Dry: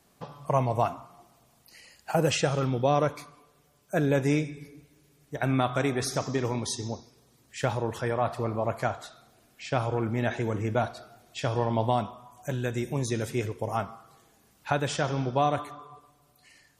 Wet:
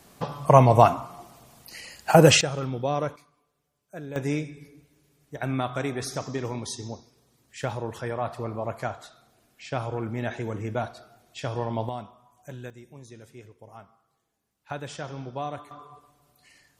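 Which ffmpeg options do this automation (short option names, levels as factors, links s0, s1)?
-af "asetnsamples=n=441:p=0,asendcmd='2.41 volume volume -3dB;3.16 volume volume -13dB;4.16 volume volume -2.5dB;11.89 volume volume -9dB;12.7 volume volume -17dB;14.7 volume volume -8dB;15.71 volume volume 0dB',volume=3.16"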